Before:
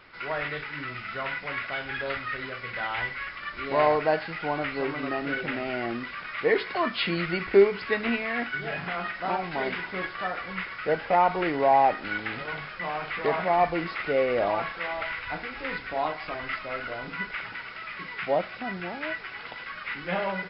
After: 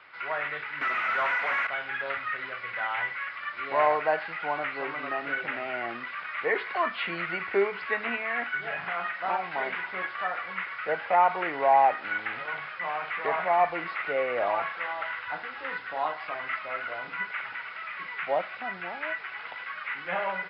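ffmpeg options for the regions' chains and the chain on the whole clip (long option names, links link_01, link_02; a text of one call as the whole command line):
ffmpeg -i in.wav -filter_complex "[0:a]asettb=1/sr,asplit=3[link_01][link_02][link_03];[link_01]atrim=end=0.814[link_04];[link_02]atrim=start=0.81:end=1.67,asetpts=PTS-STARTPTS,afade=type=in:duration=0.004:curve=qsin,afade=type=out:start_time=0.856:duration=0.004:curve=qsin,highpass=frequency=170:width=0.5412,highpass=frequency=170:width=1.3066,asplit=2[link_05][link_06];[link_06]highpass=frequency=720:poles=1,volume=27dB,asoftclip=type=tanh:threshold=-19.5dB[link_07];[link_05][link_07]amix=inputs=2:normalize=0,lowpass=frequency=2300:poles=1,volume=-6dB[link_08];[link_03]atrim=start=1.666[link_09];[link_04][link_08]acrossfade=duration=0.004:curve1=hsin:curve2=qsin[link_10];[link_10][link_09]acrossfade=duration=0.004:curve1=qsin:curve2=hsin,asettb=1/sr,asplit=3[link_11][link_12][link_13];[link_11]atrim=end=14.844[link_14];[link_12]atrim=start=14.84:end=16.23,asetpts=PTS-STARTPTS,afade=type=in:duration=0.004:curve=qsin,afade=type=out:start_time=1.386:duration=0.004:curve=qsin,equalizer=frequency=2300:width=5.2:gain=-7.5,bandreject=frequency=670:width=18[link_15];[link_13]atrim=start=16.226[link_16];[link_14][link_15]acrossfade=duration=0.004:curve1=hsin:curve2=qsin[link_17];[link_17][link_16]acrossfade=duration=0.004:curve1=qsin:curve2=hsin,highpass=frequency=78:width=0.5412,highpass=frequency=78:width=1.3066,acrossover=split=600 3600:gain=0.2 1 0.126[link_18][link_19][link_20];[link_18][link_19][link_20]amix=inputs=3:normalize=0,acrossover=split=2800[link_21][link_22];[link_22]acompressor=threshold=-50dB:ratio=4:attack=1:release=60[link_23];[link_21][link_23]amix=inputs=2:normalize=0,volume=2dB" out.wav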